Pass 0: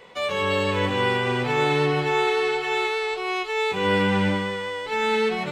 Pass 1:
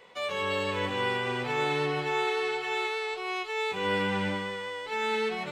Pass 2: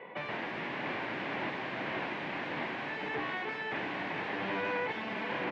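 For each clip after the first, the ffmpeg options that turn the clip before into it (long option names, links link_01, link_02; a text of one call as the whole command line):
ffmpeg -i in.wav -af "lowshelf=frequency=310:gain=-5.5,volume=-5.5dB" out.wav
ffmpeg -i in.wav -af "aeval=exprs='(mod(47.3*val(0)+1,2)-1)/47.3':channel_layout=same,highpass=frequency=130:width=0.5412,highpass=frequency=130:width=1.3066,equalizer=frequency=300:width_type=q:width=4:gain=4,equalizer=frequency=470:width_type=q:width=4:gain=-3,equalizer=frequency=1300:width_type=q:width=4:gain=-9,lowpass=frequency=2200:width=0.5412,lowpass=frequency=2200:width=1.3066,aecho=1:1:678:0.422,volume=9dB" out.wav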